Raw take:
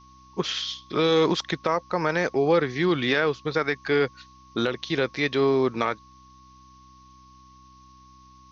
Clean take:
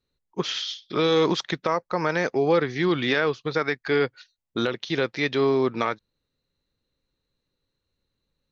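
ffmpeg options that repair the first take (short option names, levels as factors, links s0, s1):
-af "bandreject=f=64:t=h:w=4,bandreject=f=128:t=h:w=4,bandreject=f=192:t=h:w=4,bandreject=f=256:t=h:w=4,bandreject=f=320:t=h:w=4,bandreject=f=1100:w=30,afftdn=nr=28:nf=-52"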